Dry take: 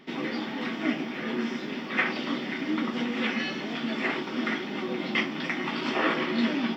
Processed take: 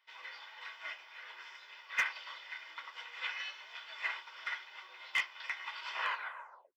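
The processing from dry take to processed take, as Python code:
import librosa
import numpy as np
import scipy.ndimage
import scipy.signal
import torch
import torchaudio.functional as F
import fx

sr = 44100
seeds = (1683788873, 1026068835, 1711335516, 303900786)

y = fx.tape_stop_end(x, sr, length_s=0.75)
y = scipy.signal.sosfilt(scipy.signal.butter(4, 870.0, 'highpass', fs=sr, output='sos'), y)
y = y + 0.49 * np.pad(y, (int(2.0 * sr / 1000.0), 0))[:len(y)]
y = np.clip(y, -10.0 ** (-18.0 / 20.0), 10.0 ** (-18.0 / 20.0))
y = fx.upward_expand(y, sr, threshold_db=-49.0, expansion=1.5)
y = y * librosa.db_to_amplitude(-5.0)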